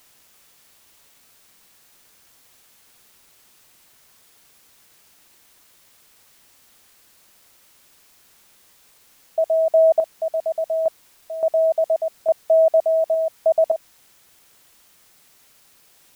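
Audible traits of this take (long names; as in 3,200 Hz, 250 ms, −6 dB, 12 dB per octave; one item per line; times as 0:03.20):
sample-and-hold tremolo, depth 95%
a quantiser's noise floor 10 bits, dither triangular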